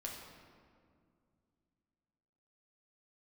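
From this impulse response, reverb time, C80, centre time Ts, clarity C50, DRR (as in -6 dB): 2.2 s, 4.0 dB, 71 ms, 2.5 dB, -2.0 dB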